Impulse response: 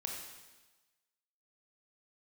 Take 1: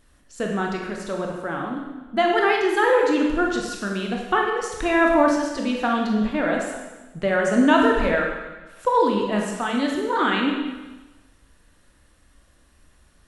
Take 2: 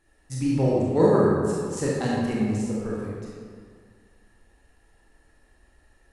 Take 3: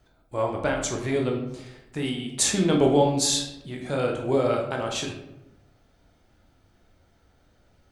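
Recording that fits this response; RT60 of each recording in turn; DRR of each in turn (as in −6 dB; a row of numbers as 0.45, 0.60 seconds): 1; 1.2, 2.0, 0.90 seconds; 0.0, −6.0, 0.5 decibels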